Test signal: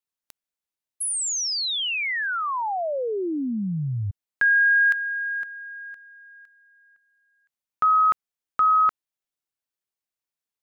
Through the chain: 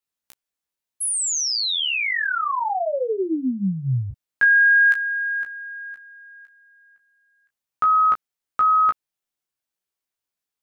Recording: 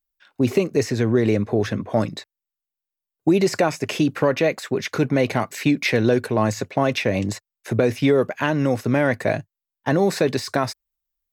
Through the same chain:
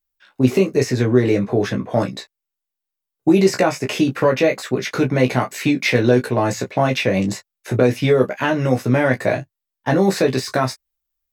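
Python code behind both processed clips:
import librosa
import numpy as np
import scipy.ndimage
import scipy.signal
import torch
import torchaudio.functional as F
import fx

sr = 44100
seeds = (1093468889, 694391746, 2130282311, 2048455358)

y = fx.room_early_taps(x, sr, ms=(16, 31), db=(-3.5, -9.5))
y = y * librosa.db_to_amplitude(1.0)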